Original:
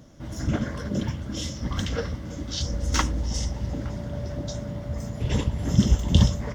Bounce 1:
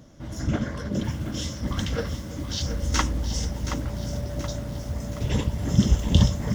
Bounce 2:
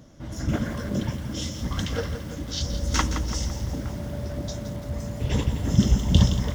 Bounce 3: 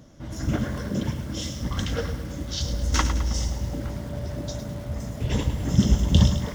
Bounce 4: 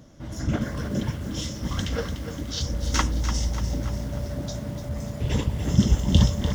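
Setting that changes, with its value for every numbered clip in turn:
feedback echo at a low word length, delay time: 725, 169, 106, 295 milliseconds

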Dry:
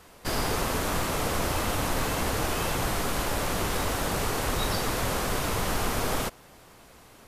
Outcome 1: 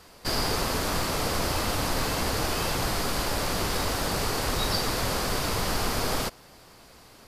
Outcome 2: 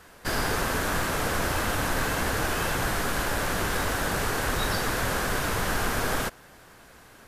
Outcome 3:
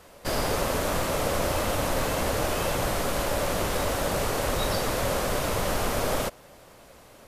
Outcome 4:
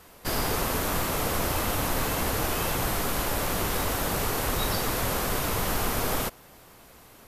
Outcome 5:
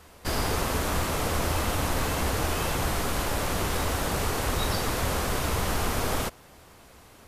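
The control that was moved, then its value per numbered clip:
parametric band, centre frequency: 4,700, 1,600, 570, 13,000, 74 Hertz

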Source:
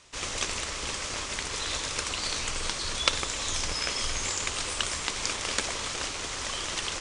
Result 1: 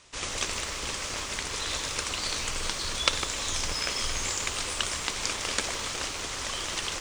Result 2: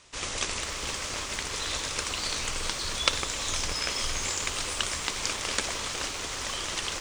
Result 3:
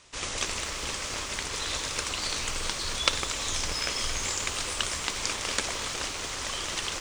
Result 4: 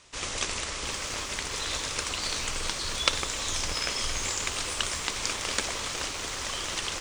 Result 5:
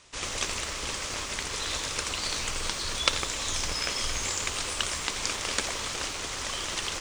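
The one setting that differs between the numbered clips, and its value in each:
feedback echo at a low word length, delay time: 152, 461, 235, 694, 85 milliseconds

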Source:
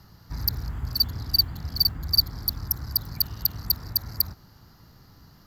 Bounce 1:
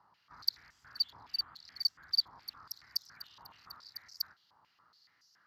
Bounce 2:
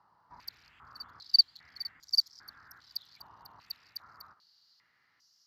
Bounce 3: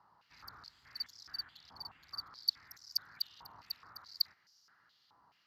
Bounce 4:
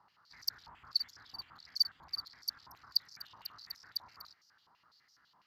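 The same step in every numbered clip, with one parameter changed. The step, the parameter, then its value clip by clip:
band-pass on a step sequencer, speed: 7.1, 2.5, 4.7, 12 Hertz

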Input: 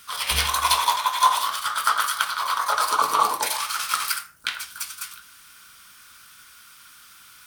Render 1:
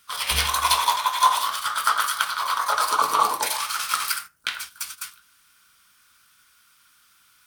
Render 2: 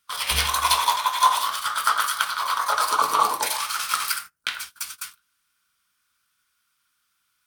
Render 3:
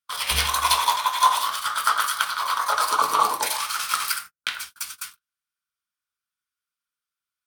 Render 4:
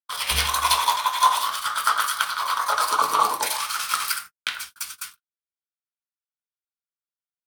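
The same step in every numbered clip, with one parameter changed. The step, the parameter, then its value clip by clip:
noise gate, range: −10, −23, −41, −57 decibels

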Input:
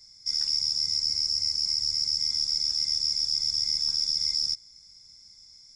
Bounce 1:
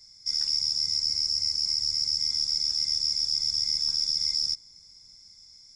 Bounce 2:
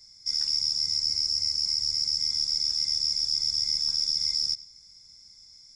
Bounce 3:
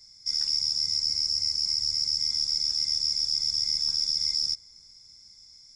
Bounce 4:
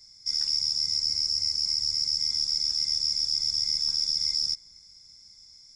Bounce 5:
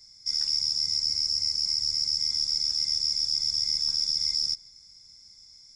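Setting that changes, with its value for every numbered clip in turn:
bucket-brigade delay, delay time: 608, 95, 369, 244, 157 milliseconds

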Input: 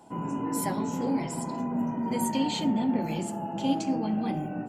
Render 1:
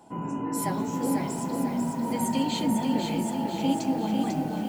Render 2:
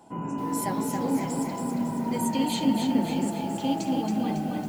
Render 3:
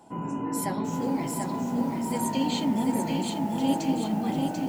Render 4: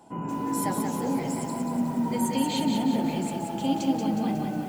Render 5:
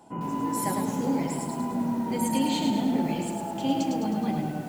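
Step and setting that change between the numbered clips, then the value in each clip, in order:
feedback echo at a low word length, delay time: 496, 276, 740, 182, 105 milliseconds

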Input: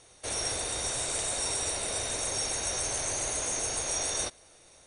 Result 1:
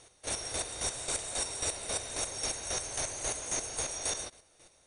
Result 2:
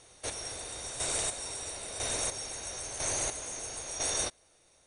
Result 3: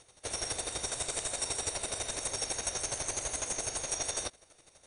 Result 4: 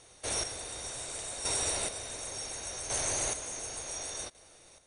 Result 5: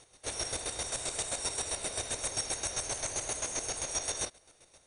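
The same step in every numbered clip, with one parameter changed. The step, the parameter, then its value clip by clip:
square-wave tremolo, speed: 3.7, 1, 12, 0.69, 7.6 Hertz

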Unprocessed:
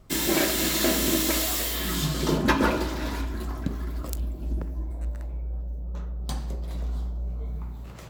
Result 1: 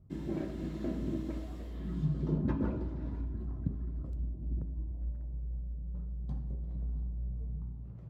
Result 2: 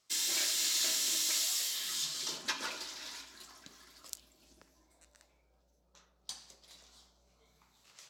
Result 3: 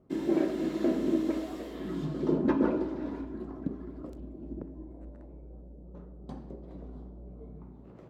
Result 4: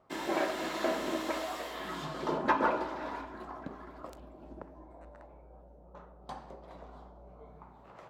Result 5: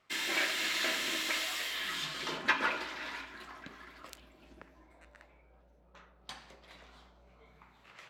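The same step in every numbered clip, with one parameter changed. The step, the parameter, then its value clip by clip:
resonant band-pass, frequency: 110, 5,700, 320, 840, 2,200 Hertz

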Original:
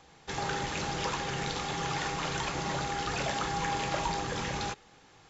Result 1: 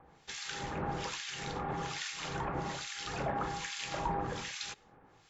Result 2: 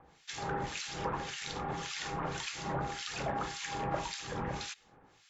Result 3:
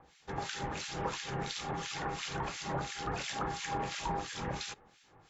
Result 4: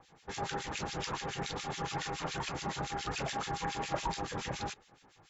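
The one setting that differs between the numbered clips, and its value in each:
two-band tremolo in antiphase, speed: 1.2, 1.8, 2.9, 7.1 Hertz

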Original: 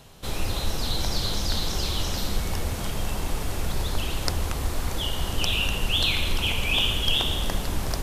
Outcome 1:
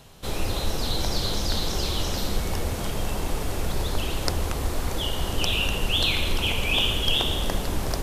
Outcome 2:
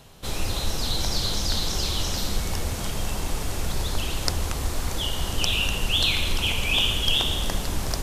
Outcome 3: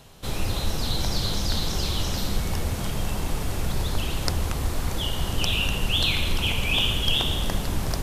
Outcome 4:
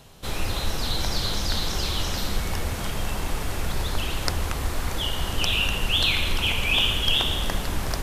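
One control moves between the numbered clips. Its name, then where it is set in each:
dynamic equaliser, frequency: 440, 6,600, 140, 1,700 Hertz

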